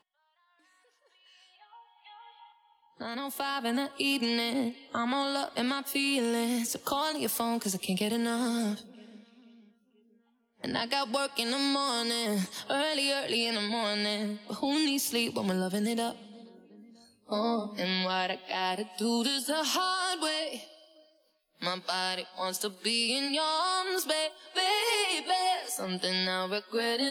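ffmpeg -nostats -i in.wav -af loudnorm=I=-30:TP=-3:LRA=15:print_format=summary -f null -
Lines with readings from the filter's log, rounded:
Input Integrated:    -29.9 LUFS
Input True Peak:     -13.6 dBTP
Input LRA:             3.8 LU
Input Threshold:     -40.9 LUFS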